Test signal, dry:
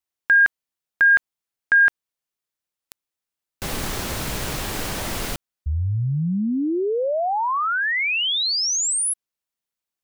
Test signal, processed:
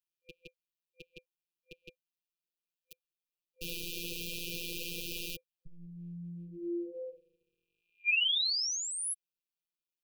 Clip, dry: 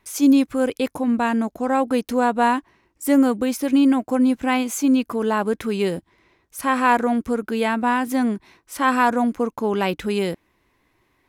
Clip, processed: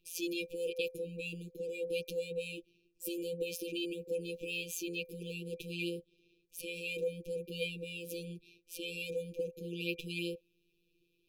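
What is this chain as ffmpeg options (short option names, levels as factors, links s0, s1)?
-filter_complex "[0:a]afftfilt=real='hypot(re,im)*cos(PI*b)':imag='0':win_size=1024:overlap=0.75,equalizer=f=250:t=o:w=1:g=-9,equalizer=f=500:t=o:w=1:g=7,equalizer=f=2000:t=o:w=1:g=4,equalizer=f=8000:t=o:w=1:g=-9,acrossover=split=410|1300|2000[s0][s1][s2][s3];[s0]acompressor=threshold=0.00501:ratio=4:attack=44:release=40:knee=6:detection=peak[s4];[s4][s1][s2][s3]amix=inputs=4:normalize=0,afftfilt=real='re*(1-between(b*sr/4096,510,2400))':imag='im*(1-between(b*sr/4096,510,2400))':win_size=4096:overlap=0.75,volume=0.668"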